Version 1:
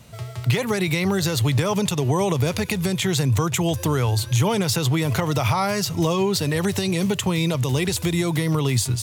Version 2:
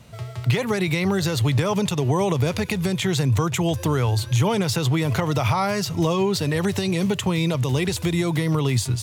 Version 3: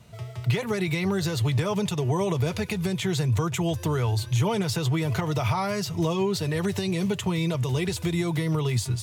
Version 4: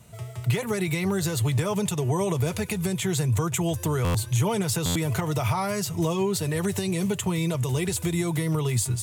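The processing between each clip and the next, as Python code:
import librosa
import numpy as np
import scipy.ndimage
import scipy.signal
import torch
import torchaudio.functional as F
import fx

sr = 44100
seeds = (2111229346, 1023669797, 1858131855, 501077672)

y1 = fx.high_shelf(x, sr, hz=6100.0, db=-6.5)
y2 = fx.notch_comb(y1, sr, f0_hz=270.0)
y2 = F.gain(torch.from_numpy(y2), -3.5).numpy()
y3 = fx.high_shelf_res(y2, sr, hz=6400.0, db=7.0, q=1.5)
y3 = fx.buffer_glitch(y3, sr, at_s=(4.04, 4.85), block=512, repeats=8)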